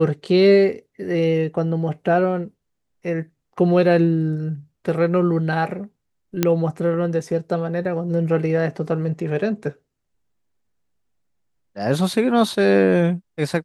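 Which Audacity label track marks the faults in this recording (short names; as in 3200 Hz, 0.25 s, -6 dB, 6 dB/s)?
6.430000	6.430000	pop -3 dBFS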